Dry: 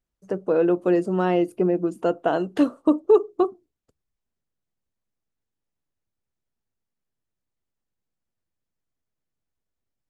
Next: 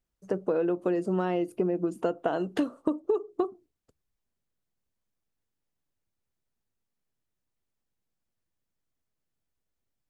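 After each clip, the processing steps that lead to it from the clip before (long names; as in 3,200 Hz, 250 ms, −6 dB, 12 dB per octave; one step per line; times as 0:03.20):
downward compressor 12 to 1, threshold −23 dBFS, peak gain reduction 13 dB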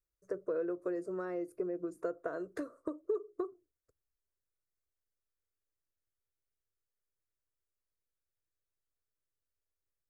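phaser with its sweep stopped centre 820 Hz, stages 6
level −7 dB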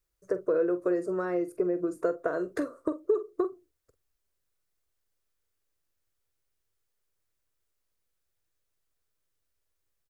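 double-tracking delay 45 ms −13 dB
level +8.5 dB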